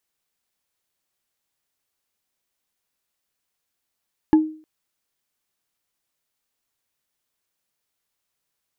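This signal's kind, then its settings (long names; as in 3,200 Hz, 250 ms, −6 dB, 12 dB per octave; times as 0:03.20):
struck wood bar, length 0.31 s, lowest mode 312 Hz, decay 0.42 s, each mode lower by 11 dB, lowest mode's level −7.5 dB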